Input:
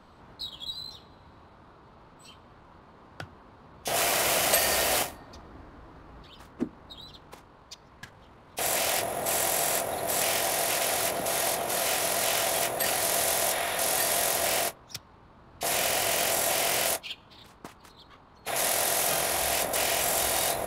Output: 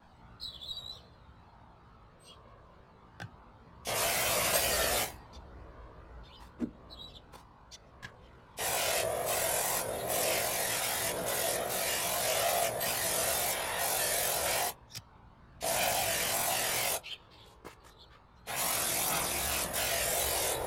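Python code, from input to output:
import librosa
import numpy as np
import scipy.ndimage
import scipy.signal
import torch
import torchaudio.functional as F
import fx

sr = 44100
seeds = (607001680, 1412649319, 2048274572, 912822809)

y = fx.wow_flutter(x, sr, seeds[0], rate_hz=2.1, depth_cents=81.0)
y = fx.chorus_voices(y, sr, voices=4, hz=0.15, base_ms=17, depth_ms=1.2, mix_pct=60)
y = y * librosa.db_to_amplitude(-1.5)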